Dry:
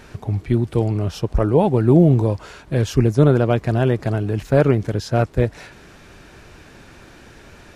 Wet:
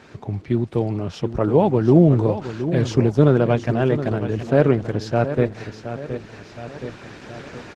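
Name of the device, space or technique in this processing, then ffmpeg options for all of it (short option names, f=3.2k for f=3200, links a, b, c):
video call: -filter_complex "[0:a]lowpass=6.1k,asplit=3[a][b][c];[a]afade=t=out:st=3.4:d=0.02[d];[b]bandreject=f=50:t=h:w=6,bandreject=f=100:t=h:w=6,bandreject=f=150:t=h:w=6,bandreject=f=200:t=h:w=6,bandreject=f=250:t=h:w=6,bandreject=f=300:t=h:w=6,bandreject=f=350:t=h:w=6,afade=t=in:st=3.4:d=0.02,afade=t=out:st=4.04:d=0.02[e];[c]afade=t=in:st=4.04:d=0.02[f];[d][e][f]amix=inputs=3:normalize=0,highpass=120,aecho=1:1:720|1440|2160|2880:0.282|0.113|0.0451|0.018,dynaudnorm=f=560:g=5:m=9dB,volume=-1dB" -ar 48000 -c:a libopus -b:a 16k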